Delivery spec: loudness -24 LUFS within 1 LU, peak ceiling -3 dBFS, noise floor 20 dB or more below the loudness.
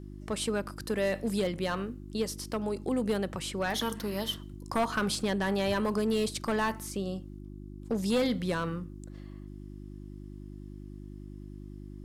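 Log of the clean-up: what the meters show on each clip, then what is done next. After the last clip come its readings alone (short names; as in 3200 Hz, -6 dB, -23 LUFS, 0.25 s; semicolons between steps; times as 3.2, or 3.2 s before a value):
clipped 0.9%; flat tops at -22.0 dBFS; hum 50 Hz; harmonics up to 350 Hz; hum level -41 dBFS; loudness -31.5 LUFS; peak -22.0 dBFS; loudness target -24.0 LUFS
-> clip repair -22 dBFS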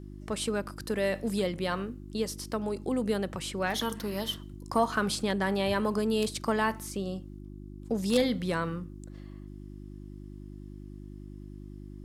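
clipped 0.0%; hum 50 Hz; harmonics up to 350 Hz; hum level -41 dBFS
-> de-hum 50 Hz, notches 7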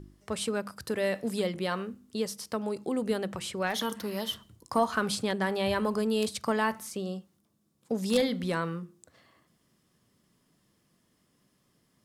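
hum none; loudness -31.0 LUFS; peak -13.0 dBFS; loudness target -24.0 LUFS
-> gain +7 dB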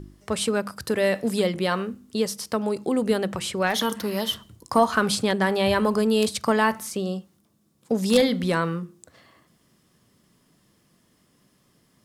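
loudness -24.0 LUFS; peak -6.0 dBFS; noise floor -64 dBFS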